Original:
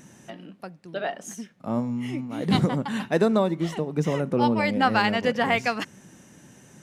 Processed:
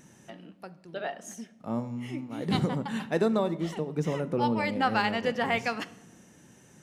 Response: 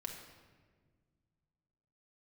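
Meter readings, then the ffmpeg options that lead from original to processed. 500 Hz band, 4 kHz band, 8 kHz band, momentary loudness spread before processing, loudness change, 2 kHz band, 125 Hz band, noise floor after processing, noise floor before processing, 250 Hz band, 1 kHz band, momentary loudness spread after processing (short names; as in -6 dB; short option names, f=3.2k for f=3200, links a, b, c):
-4.5 dB, -5.0 dB, -5.0 dB, 18 LU, -5.0 dB, -5.0 dB, -5.0 dB, -57 dBFS, -53 dBFS, -5.5 dB, -4.5 dB, 17 LU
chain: -filter_complex "[0:a]asplit=2[a][b];[1:a]atrim=start_sample=2205,asetrate=83790,aresample=44100[c];[b][c]afir=irnorm=-1:irlink=0,volume=-1.5dB[d];[a][d]amix=inputs=2:normalize=0,volume=-7dB"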